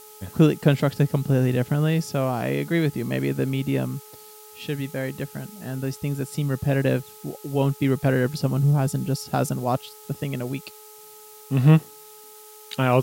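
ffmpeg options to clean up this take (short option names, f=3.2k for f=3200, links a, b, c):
-af "bandreject=f=426.7:t=h:w=4,bandreject=f=853.4:t=h:w=4,bandreject=f=1.2801k:t=h:w=4,afftdn=nr=22:nf=-46"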